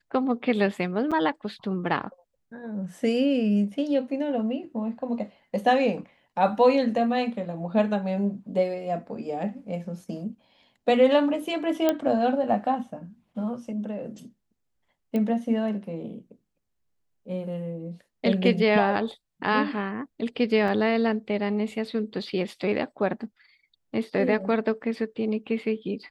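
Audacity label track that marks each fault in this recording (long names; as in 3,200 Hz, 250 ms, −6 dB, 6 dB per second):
1.110000	1.120000	drop-out 6.3 ms
11.890000	11.890000	click −9 dBFS
15.160000	15.160000	click −18 dBFS
20.680000	20.680000	drop-out 2.8 ms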